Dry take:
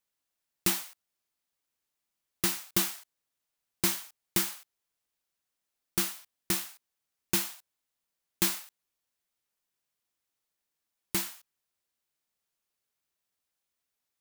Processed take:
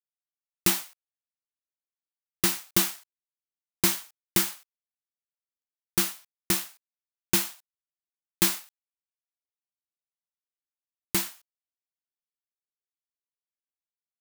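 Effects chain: companding laws mixed up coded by A; trim +5 dB

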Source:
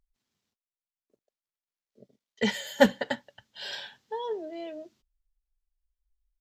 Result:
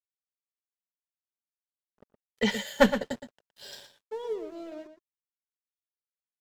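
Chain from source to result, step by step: single-diode clipper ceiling -14.5 dBFS; 2.99–4.72 s: FFT filter 460 Hz 0 dB, 840 Hz -9 dB, 2.7 kHz -11 dB, 7.5 kHz +4 dB; crossover distortion -51.5 dBFS; echo from a far wall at 20 m, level -10 dB; trim +1.5 dB

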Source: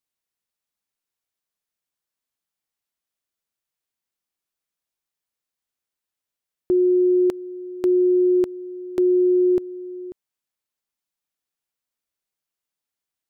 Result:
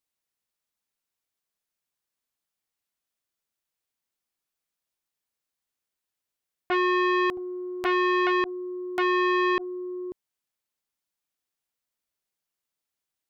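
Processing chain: 7.37–8.27 s: comb filter that takes the minimum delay 2.8 ms; transformer saturation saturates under 1.5 kHz

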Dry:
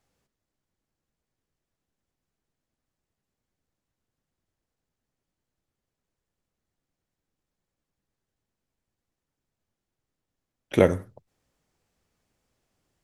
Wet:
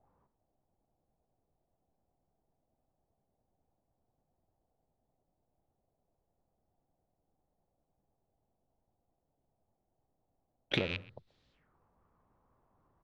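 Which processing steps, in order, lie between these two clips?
rattle on loud lows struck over -28 dBFS, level -11 dBFS; bass shelf 280 Hz +4 dB; speakerphone echo 130 ms, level -27 dB; compression 10:1, threshold -31 dBFS, peak gain reduction 21 dB; touch-sensitive low-pass 560–3900 Hz up, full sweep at -60.5 dBFS

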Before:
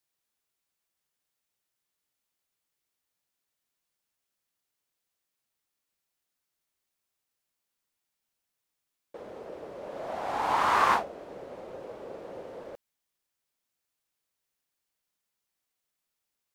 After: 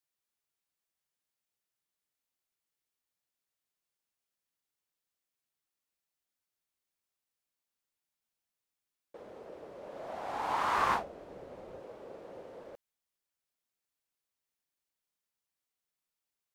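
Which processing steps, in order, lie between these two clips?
10.78–11.79 s: bass shelf 140 Hz +9 dB; trim -6 dB

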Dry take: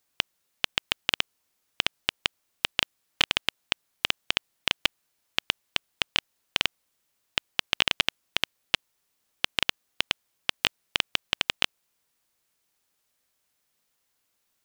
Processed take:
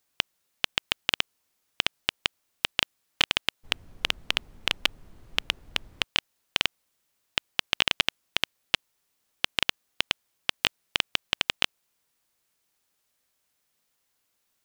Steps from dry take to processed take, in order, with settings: 3.63–6.02 s: added noise brown -48 dBFS

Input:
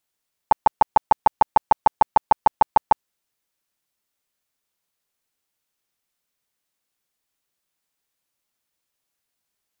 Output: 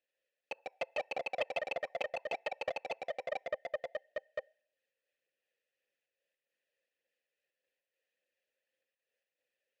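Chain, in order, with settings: band-stop 1.1 kHz, Q 25; hard clipper -22 dBFS, distortion -7 dB; trance gate "xx.x.xxxxx" 104 bpm -60 dB; ever faster or slower copies 85 ms, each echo -2 st, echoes 3; vowel filter e; on a send at -23.5 dB: reverberation RT60 0.65 s, pre-delay 3 ms; on the sum: phaser 1.7 Hz, delay 2.3 ms, feedback 29%; loudspeaker Doppler distortion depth 0.11 ms; trim +6.5 dB

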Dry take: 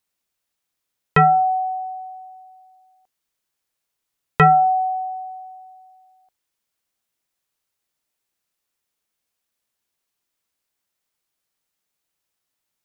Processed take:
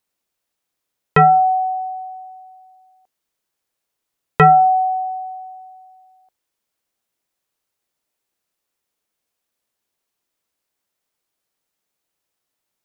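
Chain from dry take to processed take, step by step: peaking EQ 460 Hz +4.5 dB 2.3 oct

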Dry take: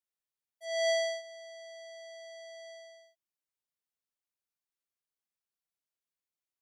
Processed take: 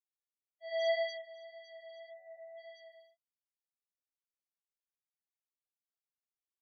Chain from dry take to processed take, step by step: 2.11–2.58 s: one-bit delta coder 16 kbps, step -55 dBFS; chorus 1.8 Hz, delay 16 ms, depth 2.6 ms; loudest bins only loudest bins 8

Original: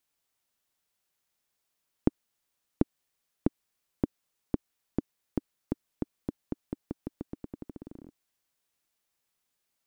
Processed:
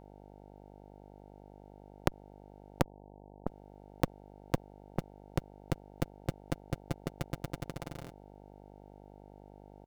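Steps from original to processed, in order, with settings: sorted samples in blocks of 256 samples; comb 7.2 ms, depth 42%; 2.82–3.47 s: steep low-pass 1.1 kHz 96 dB/octave; mains buzz 50 Hz, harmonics 18, -57 dBFS -2 dB/octave; transformer saturation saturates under 760 Hz; trim +3 dB

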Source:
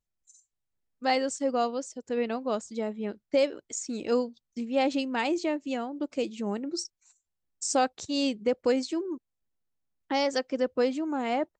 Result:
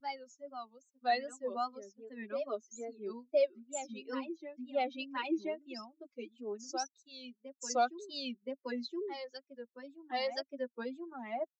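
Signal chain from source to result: expander on every frequency bin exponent 2; Chebyshev band-pass 250–6900 Hz, order 5; comb 5.2 ms, depth 94%; reverse echo 1022 ms -9 dB; wow and flutter 130 cents; trim -6 dB

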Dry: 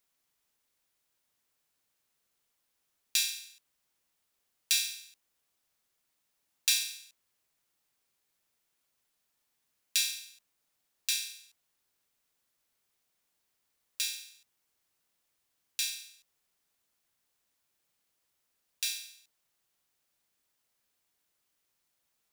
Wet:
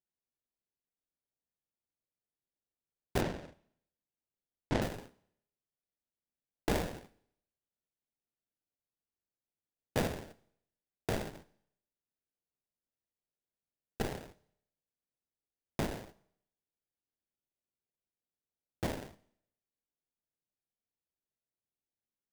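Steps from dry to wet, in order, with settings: gate -51 dBFS, range -24 dB; in parallel at -2.5 dB: peak limiter -21.5 dBFS, peak gain reduction 12 dB; on the sum: sample-rate reducer 1.2 kHz, jitter 20%; 3.21–4.82 s: distance through air 80 m; Schroeder reverb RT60 0.71 s, combs from 28 ms, DRR 19 dB; trim -5.5 dB

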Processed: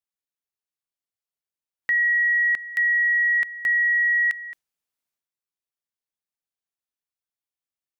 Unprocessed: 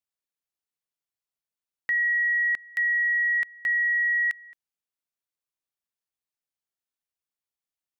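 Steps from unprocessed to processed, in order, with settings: spectral noise reduction 7 dB; transient shaper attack 0 dB, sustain +8 dB; trim +3.5 dB

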